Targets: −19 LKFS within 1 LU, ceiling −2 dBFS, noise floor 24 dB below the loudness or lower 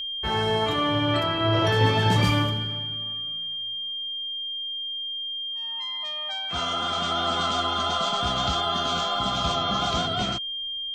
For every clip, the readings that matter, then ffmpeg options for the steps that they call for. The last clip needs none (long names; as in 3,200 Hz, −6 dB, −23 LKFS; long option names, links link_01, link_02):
interfering tone 3,200 Hz; level of the tone −29 dBFS; integrated loudness −25.0 LKFS; sample peak −9.0 dBFS; target loudness −19.0 LKFS
→ -af "bandreject=frequency=3200:width=30"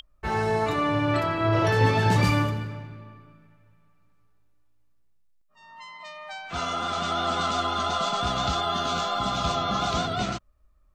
interfering tone none found; integrated loudness −25.0 LKFS; sample peak −10.0 dBFS; target loudness −19.0 LKFS
→ -af "volume=6dB"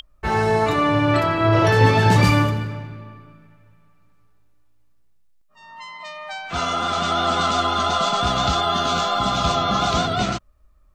integrated loudness −19.0 LKFS; sample peak −4.0 dBFS; background noise floor −55 dBFS